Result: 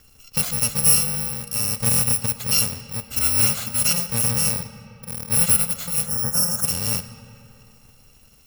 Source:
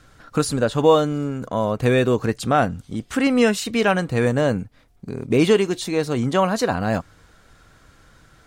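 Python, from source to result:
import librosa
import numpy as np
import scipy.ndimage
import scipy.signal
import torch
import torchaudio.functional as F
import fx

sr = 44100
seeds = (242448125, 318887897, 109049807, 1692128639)

y = fx.bit_reversed(x, sr, seeds[0], block=128)
y = fx.spec_box(y, sr, start_s=6.06, length_s=0.59, low_hz=1900.0, high_hz=5200.0, gain_db=-17)
y = fx.rev_freeverb(y, sr, rt60_s=3.1, hf_ratio=0.6, predelay_ms=5, drr_db=11.0)
y = F.gain(torch.from_numpy(y), -2.0).numpy()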